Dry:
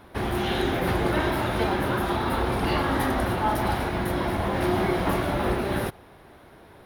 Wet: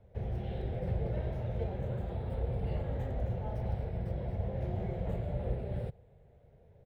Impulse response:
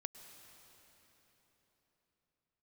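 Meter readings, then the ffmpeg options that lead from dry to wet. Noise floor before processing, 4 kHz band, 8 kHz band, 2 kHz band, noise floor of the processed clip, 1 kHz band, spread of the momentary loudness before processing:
-50 dBFS, under -25 dB, under -30 dB, -26.0 dB, -60 dBFS, -21.5 dB, 3 LU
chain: -filter_complex "[0:a]firequalizer=gain_entry='entry(130,0);entry(310,-23);entry(470,-3);entry(1100,-29);entry(2000,-20);entry(6000,-26);entry(14000,-16)':delay=0.05:min_phase=1,acrossover=split=270|5400[s0][s1][s2];[s2]acrusher=samples=10:mix=1:aa=0.000001:lfo=1:lforange=6:lforate=0.31[s3];[s0][s1][s3]amix=inputs=3:normalize=0,volume=0.668"

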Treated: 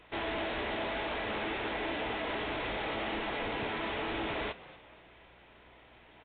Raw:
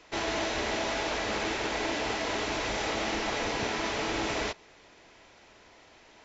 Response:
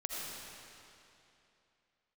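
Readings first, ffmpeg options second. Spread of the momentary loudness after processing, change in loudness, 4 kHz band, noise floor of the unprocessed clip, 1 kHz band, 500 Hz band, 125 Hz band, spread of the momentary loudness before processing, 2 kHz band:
2 LU, -4.5 dB, -6.0 dB, -57 dBFS, -3.5 dB, -4.0 dB, -3.5 dB, 1 LU, -3.5 dB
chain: -filter_complex "[0:a]aresample=16000,asoftclip=type=tanh:threshold=0.0473,aresample=44100,aeval=exprs='val(0)+0.000631*(sin(2*PI*60*n/s)+sin(2*PI*2*60*n/s)/2+sin(2*PI*3*60*n/s)/3+sin(2*PI*4*60*n/s)/4+sin(2*PI*5*60*n/s)/5)':c=same,asplit=4[s0][s1][s2][s3];[s1]adelay=241,afreqshift=100,volume=0.126[s4];[s2]adelay=482,afreqshift=200,volume=0.0519[s5];[s3]adelay=723,afreqshift=300,volume=0.0211[s6];[s0][s4][s5][s6]amix=inputs=4:normalize=0,aresample=8000,aresample=44100,volume=0.841" -ar 24000 -c:a aac -b:a 32k

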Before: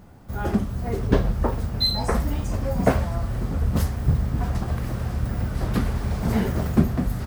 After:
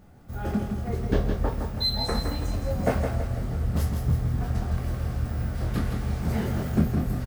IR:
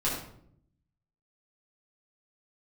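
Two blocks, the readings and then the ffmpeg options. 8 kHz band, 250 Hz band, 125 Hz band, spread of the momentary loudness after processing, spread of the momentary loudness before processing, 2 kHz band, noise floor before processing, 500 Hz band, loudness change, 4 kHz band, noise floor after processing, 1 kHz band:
-3.5 dB, -4.0 dB, -2.5 dB, 5 LU, 6 LU, -4.0 dB, -31 dBFS, -3.5 dB, -3.0 dB, -3.0 dB, -34 dBFS, -4.5 dB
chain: -filter_complex "[0:a]bandreject=f=1000:w=10,asplit=2[s0][s1];[s1]adelay=24,volume=0.531[s2];[s0][s2]amix=inputs=2:normalize=0,asplit=2[s3][s4];[s4]aecho=0:1:164|328|492|656|820|984:0.501|0.236|0.111|0.052|0.0245|0.0115[s5];[s3][s5]amix=inputs=2:normalize=0,volume=0.501"

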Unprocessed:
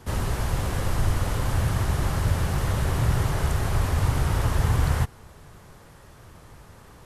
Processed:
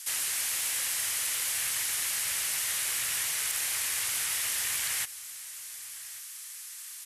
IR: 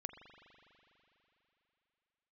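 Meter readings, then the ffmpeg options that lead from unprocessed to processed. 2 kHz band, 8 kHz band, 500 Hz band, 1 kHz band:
+0.5 dB, +11.5 dB, -20.5 dB, -13.0 dB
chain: -filter_complex "[0:a]acrossover=split=760|1700[s0][s1][s2];[s0]acrusher=bits=4:mix=0:aa=0.5[s3];[s1]acompressor=threshold=0.00355:ratio=6[s4];[s3][s4][s2]amix=inputs=3:normalize=0,lowpass=10000,equalizer=f=2100:t=o:w=1.1:g=7,acrossover=split=3000[s5][s6];[s6]acompressor=threshold=0.00447:ratio=4:attack=1:release=60[s7];[s5][s7]amix=inputs=2:normalize=0,crystalizer=i=8.5:c=0,aderivative,asplit=2[s8][s9];[s9]aecho=0:1:1140:0.112[s10];[s8][s10]amix=inputs=2:normalize=0"

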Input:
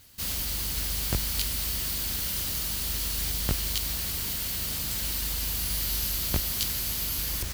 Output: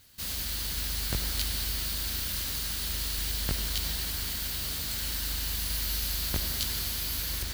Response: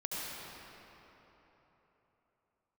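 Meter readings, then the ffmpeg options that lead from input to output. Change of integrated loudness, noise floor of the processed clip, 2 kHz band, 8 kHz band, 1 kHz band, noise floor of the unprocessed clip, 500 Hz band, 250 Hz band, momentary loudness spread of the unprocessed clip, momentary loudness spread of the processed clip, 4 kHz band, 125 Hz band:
-2.5 dB, -34 dBFS, 0.0 dB, -3.0 dB, -1.5 dB, -32 dBFS, -3.0 dB, -3.0 dB, 2 LU, 2 LU, 0.0 dB, -1.5 dB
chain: -filter_complex "[0:a]asplit=2[s0][s1];[s1]equalizer=f=1600:t=o:w=0.67:g=8,equalizer=f=4000:t=o:w=0.67:g=8,equalizer=f=16000:t=o:w=0.67:g=-10[s2];[1:a]atrim=start_sample=2205,highshelf=f=10000:g=9[s3];[s2][s3]afir=irnorm=-1:irlink=0,volume=0.501[s4];[s0][s4]amix=inputs=2:normalize=0,volume=0.473"

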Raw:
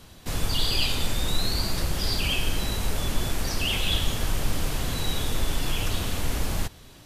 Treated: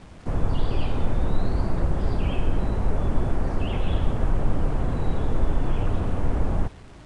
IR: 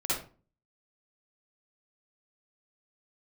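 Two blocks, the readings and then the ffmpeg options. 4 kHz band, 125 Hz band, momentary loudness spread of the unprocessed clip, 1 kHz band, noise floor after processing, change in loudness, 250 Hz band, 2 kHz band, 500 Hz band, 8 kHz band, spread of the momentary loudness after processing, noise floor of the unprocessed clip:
-17.5 dB, +4.5 dB, 5 LU, +2.0 dB, -44 dBFS, 0.0 dB, +4.5 dB, -8.0 dB, +4.0 dB, under -20 dB, 1 LU, -49 dBFS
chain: -af "lowpass=1000,aeval=exprs='val(0)+0.00158*(sin(2*PI*50*n/s)+sin(2*PI*2*50*n/s)/2+sin(2*PI*3*50*n/s)/3+sin(2*PI*4*50*n/s)/4+sin(2*PI*5*50*n/s)/5)':c=same,acrusher=bits=8:mix=0:aa=0.000001,volume=1.68" -ar 22050 -c:a nellymoser

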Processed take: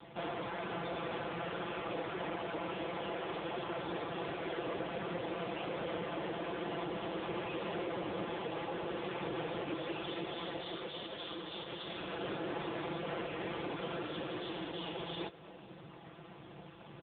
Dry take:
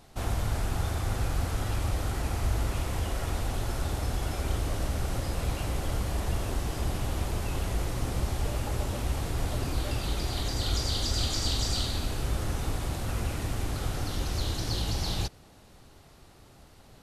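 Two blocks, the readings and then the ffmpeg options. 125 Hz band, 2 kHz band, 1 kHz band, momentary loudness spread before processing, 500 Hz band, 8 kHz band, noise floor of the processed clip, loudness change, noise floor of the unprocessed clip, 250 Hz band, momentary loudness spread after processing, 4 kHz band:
-18.5 dB, -2.5 dB, -2.5 dB, 4 LU, 0.0 dB, under -40 dB, -53 dBFS, -8.5 dB, -54 dBFS, -3.5 dB, 4 LU, -9.5 dB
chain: -filter_complex "[0:a]highpass=100,adynamicequalizer=threshold=0.001:dfrequency=430:dqfactor=6.2:tfrequency=430:tqfactor=6.2:attack=5:release=100:ratio=0.375:range=4:mode=boostabove:tftype=bell,aecho=1:1:5.9:0.96,acrossover=split=200[s0][s1];[s0]acompressor=threshold=0.002:ratio=4[s2];[s2][s1]amix=inputs=2:normalize=0,alimiter=level_in=1.33:limit=0.0631:level=0:latency=1:release=183,volume=0.75,aresample=11025,asoftclip=type=tanh:threshold=0.015,aresample=44100,aeval=exprs='0.0282*(cos(1*acos(clip(val(0)/0.0282,-1,1)))-cos(1*PI/2))+0.000891*(cos(2*acos(clip(val(0)/0.0282,-1,1)))-cos(2*PI/2))+0.000282*(cos(8*acos(clip(val(0)/0.0282,-1,1)))-cos(8*PI/2))':c=same,asplit=2[s3][s4];[s4]adelay=240,highpass=300,lowpass=3400,asoftclip=type=hard:threshold=0.0106,volume=0.0631[s5];[s3][s5]amix=inputs=2:normalize=0,volume=2" -ar 8000 -c:a libopencore_amrnb -b:a 5150

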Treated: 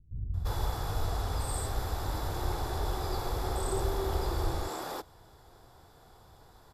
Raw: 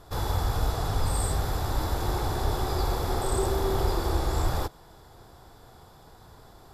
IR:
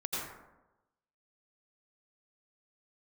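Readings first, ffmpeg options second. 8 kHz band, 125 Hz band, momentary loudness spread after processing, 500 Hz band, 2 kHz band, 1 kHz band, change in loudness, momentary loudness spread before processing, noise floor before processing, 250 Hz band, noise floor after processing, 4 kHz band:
-5.0 dB, -5.5 dB, 5 LU, -5.5 dB, -5.0 dB, -5.0 dB, -5.5 dB, 3 LU, -52 dBFS, -6.5 dB, -58 dBFS, -5.0 dB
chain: -filter_complex "[0:a]acrossover=split=200[s0][s1];[s1]adelay=340[s2];[s0][s2]amix=inputs=2:normalize=0,volume=0.562"

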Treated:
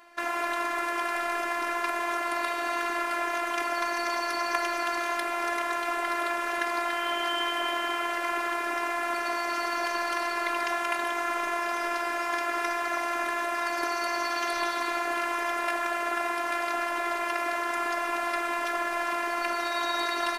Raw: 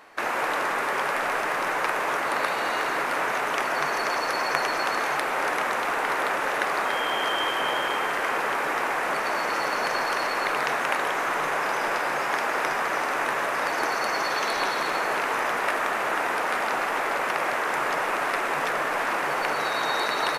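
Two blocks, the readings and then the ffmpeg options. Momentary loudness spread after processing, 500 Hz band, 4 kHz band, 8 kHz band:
1 LU, -3.5 dB, -3.5 dB, -3.5 dB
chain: -af "afftfilt=real='hypot(re,im)*cos(PI*b)':imag='0':win_size=512:overlap=0.75"

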